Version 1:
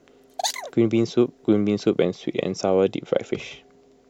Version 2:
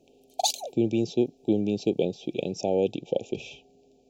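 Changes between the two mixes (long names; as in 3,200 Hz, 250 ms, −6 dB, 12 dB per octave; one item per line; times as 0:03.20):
speech −5.0 dB
master: add linear-phase brick-wall band-stop 890–2,300 Hz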